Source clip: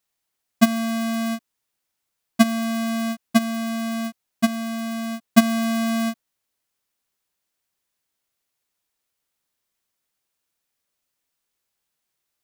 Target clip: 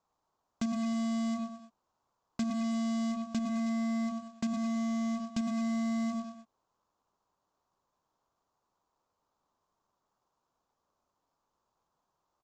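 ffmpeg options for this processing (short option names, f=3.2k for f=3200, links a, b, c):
-filter_complex "[0:a]highshelf=f=1.5k:t=q:w=3:g=-12.5,aecho=1:1:104|208|312:0.299|0.0866|0.0251,aresample=16000,acrusher=bits=3:mode=log:mix=0:aa=0.000001,aresample=44100,acompressor=threshold=-23dB:ratio=6,acrossover=split=2200[a][b];[a]asoftclip=type=hard:threshold=-31.5dB[c];[c][b]amix=inputs=2:normalize=0,acrossover=split=310[d][e];[e]acompressor=threshold=-50dB:ratio=3[f];[d][f]amix=inputs=2:normalize=0,volume=5dB"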